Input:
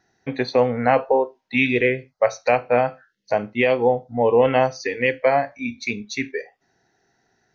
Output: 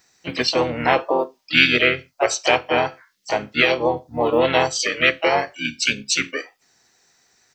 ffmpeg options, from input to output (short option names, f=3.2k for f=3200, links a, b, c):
-filter_complex "[0:a]asplit=3[a][b][c];[b]asetrate=29433,aresample=44100,atempo=1.49831,volume=-7dB[d];[c]asetrate=55563,aresample=44100,atempo=0.793701,volume=-7dB[e];[a][d][e]amix=inputs=3:normalize=0,crystalizer=i=8:c=0,equalizer=f=4.8k:w=4:g=2.5,volume=-4.5dB"